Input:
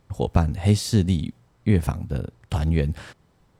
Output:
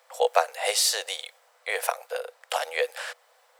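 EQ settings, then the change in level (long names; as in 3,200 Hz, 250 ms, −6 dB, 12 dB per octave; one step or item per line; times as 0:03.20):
Chebyshev high-pass with heavy ripple 480 Hz, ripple 3 dB
high-shelf EQ 8,800 Hz +8 dB
+8.0 dB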